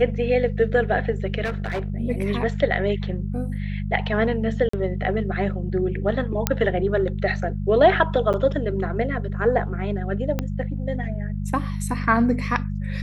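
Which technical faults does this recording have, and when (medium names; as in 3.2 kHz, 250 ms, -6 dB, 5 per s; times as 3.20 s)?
hum 50 Hz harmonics 4 -27 dBFS
1.44–1.90 s: clipped -22 dBFS
4.69–4.73 s: dropout 44 ms
6.47 s: pop -2 dBFS
8.33–8.34 s: dropout 8.3 ms
10.39 s: pop -11 dBFS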